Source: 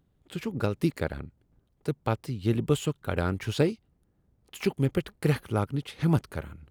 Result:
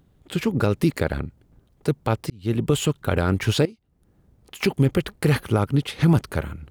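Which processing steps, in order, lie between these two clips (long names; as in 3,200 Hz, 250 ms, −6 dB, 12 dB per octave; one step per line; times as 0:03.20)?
0:02.30–0:02.82: fade in
0:03.65–0:04.63: downward compressor 4 to 1, threshold −49 dBFS, peak gain reduction 20.5 dB
boost into a limiter +18 dB
level −8 dB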